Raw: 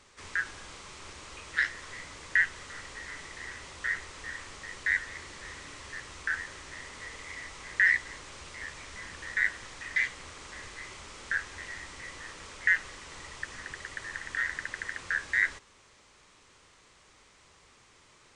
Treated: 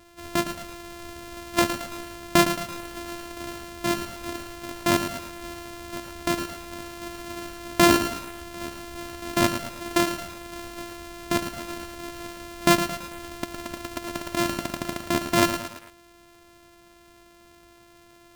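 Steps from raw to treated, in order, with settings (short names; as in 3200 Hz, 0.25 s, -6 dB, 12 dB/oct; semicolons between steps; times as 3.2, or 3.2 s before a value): sample sorter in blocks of 128 samples; lo-fi delay 0.111 s, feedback 55%, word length 7-bit, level -8.5 dB; gain +6.5 dB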